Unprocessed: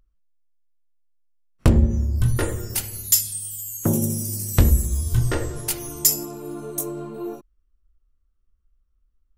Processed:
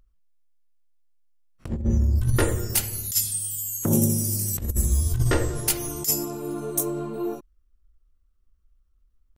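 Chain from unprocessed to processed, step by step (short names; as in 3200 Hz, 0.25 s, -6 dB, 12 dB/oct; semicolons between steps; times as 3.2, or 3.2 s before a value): negative-ratio compressor -20 dBFS, ratio -0.5; tempo 1×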